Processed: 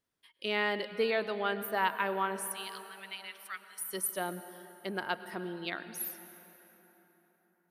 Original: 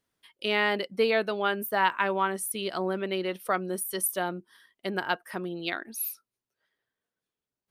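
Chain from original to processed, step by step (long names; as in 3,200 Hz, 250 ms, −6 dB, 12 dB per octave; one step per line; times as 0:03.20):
0:02.41–0:03.83: inverse Chebyshev high-pass filter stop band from 360 Hz, stop band 70 dB
on a send: convolution reverb RT60 4.1 s, pre-delay 93 ms, DRR 11.5 dB
on the sum: level −5.5 dB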